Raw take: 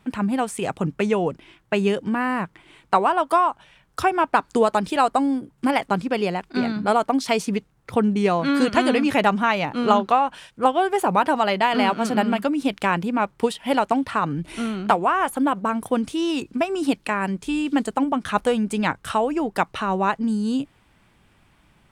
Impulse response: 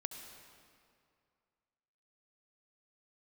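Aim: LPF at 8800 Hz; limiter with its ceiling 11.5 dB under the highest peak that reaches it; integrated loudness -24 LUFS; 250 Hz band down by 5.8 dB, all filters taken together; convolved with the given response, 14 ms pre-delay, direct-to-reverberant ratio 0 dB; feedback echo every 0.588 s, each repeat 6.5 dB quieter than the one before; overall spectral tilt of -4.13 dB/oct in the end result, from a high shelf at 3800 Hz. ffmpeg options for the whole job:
-filter_complex "[0:a]lowpass=8.8k,equalizer=f=250:t=o:g=-7,highshelf=f=3.8k:g=-8.5,alimiter=limit=-15.5dB:level=0:latency=1,aecho=1:1:588|1176|1764|2352|2940|3528:0.473|0.222|0.105|0.0491|0.0231|0.0109,asplit=2[a][b];[1:a]atrim=start_sample=2205,adelay=14[c];[b][c]afir=irnorm=-1:irlink=0,volume=1.5dB[d];[a][d]amix=inputs=2:normalize=0,volume=-0.5dB"

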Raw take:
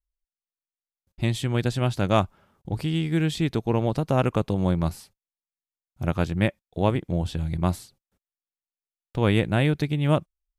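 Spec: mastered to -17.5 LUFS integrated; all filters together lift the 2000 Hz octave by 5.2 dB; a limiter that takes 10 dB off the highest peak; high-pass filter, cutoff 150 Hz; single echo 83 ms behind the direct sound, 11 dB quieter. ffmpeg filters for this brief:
-af "highpass=150,equalizer=f=2k:t=o:g=6.5,alimiter=limit=-14.5dB:level=0:latency=1,aecho=1:1:83:0.282,volume=11dB"

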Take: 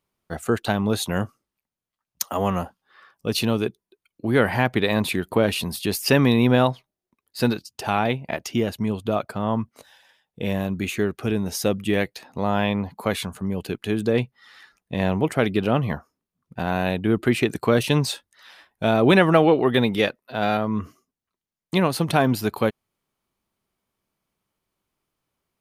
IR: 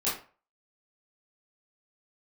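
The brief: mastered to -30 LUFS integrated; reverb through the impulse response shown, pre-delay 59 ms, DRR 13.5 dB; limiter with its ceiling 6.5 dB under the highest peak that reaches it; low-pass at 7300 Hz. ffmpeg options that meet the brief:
-filter_complex "[0:a]lowpass=7.3k,alimiter=limit=-11dB:level=0:latency=1,asplit=2[a][b];[1:a]atrim=start_sample=2205,adelay=59[c];[b][c]afir=irnorm=-1:irlink=0,volume=-21.5dB[d];[a][d]amix=inputs=2:normalize=0,volume=-5.5dB"

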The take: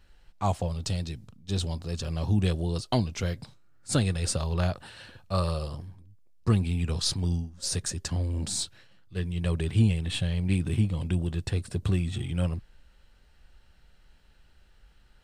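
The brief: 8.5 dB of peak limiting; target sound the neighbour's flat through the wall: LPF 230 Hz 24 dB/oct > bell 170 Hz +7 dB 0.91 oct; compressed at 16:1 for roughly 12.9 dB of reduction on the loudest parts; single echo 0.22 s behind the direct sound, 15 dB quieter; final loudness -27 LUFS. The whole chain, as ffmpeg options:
-af "acompressor=threshold=-30dB:ratio=16,alimiter=level_in=3dB:limit=-24dB:level=0:latency=1,volume=-3dB,lowpass=f=230:w=0.5412,lowpass=f=230:w=1.3066,equalizer=f=170:t=o:w=0.91:g=7,aecho=1:1:220:0.178,volume=9dB"

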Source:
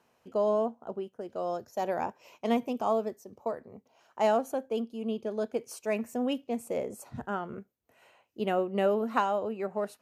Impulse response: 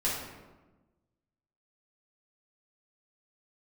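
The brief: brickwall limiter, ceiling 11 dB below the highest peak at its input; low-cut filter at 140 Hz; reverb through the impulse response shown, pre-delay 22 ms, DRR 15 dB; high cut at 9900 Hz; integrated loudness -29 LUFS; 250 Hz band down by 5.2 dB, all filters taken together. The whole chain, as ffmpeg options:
-filter_complex "[0:a]highpass=140,lowpass=9.9k,equalizer=f=250:t=o:g=-5.5,alimiter=limit=-23dB:level=0:latency=1,asplit=2[a][b];[1:a]atrim=start_sample=2205,adelay=22[c];[b][c]afir=irnorm=-1:irlink=0,volume=-23dB[d];[a][d]amix=inputs=2:normalize=0,volume=6dB"

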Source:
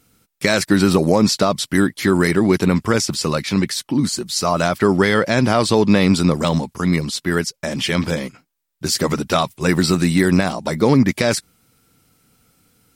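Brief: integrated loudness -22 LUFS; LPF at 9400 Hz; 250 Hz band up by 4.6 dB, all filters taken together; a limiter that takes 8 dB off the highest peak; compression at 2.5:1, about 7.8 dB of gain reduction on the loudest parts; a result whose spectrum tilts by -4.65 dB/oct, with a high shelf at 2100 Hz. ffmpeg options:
-af "lowpass=9.4k,equalizer=f=250:t=o:g=6,highshelf=f=2.1k:g=3.5,acompressor=threshold=-17dB:ratio=2.5,volume=-1dB,alimiter=limit=-10dB:level=0:latency=1"

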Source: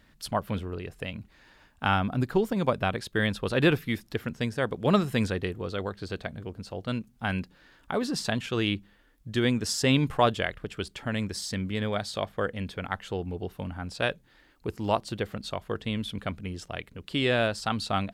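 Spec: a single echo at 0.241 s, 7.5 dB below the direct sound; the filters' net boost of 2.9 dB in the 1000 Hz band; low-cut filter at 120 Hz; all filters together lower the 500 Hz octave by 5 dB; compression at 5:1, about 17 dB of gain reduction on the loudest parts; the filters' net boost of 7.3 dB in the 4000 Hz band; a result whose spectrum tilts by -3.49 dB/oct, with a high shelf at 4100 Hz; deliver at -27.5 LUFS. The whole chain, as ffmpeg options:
-af "highpass=120,equalizer=f=500:t=o:g=-8.5,equalizer=f=1k:t=o:g=6,equalizer=f=4k:t=o:g=6,highshelf=f=4.1k:g=5.5,acompressor=threshold=-36dB:ratio=5,aecho=1:1:241:0.422,volume=11.5dB"

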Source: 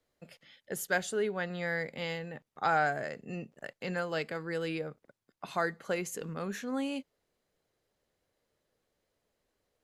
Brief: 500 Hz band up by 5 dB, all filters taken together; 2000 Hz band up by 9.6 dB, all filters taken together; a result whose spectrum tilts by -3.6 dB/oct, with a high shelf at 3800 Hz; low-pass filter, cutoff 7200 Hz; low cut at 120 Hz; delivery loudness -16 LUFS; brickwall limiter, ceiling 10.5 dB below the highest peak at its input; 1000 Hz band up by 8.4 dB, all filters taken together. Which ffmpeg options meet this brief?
-af "highpass=120,lowpass=7.2k,equalizer=f=500:t=o:g=3,equalizer=f=1k:t=o:g=8.5,equalizer=f=2k:t=o:g=7.5,highshelf=f=3.8k:g=7,volume=15dB,alimiter=limit=-2.5dB:level=0:latency=1"

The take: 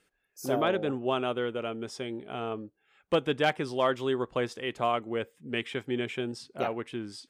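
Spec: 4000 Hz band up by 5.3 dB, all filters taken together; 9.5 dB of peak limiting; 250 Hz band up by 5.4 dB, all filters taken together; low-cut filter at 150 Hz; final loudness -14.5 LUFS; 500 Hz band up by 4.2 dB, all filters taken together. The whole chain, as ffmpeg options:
-af "highpass=150,equalizer=f=250:t=o:g=6,equalizer=f=500:t=o:g=3.5,equalizer=f=4k:t=o:g=7.5,volume=16dB,alimiter=limit=-2.5dB:level=0:latency=1"

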